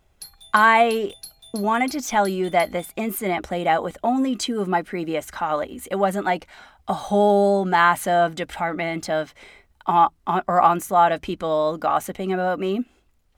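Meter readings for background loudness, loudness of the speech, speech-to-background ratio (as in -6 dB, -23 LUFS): -41.0 LUFS, -21.5 LUFS, 19.5 dB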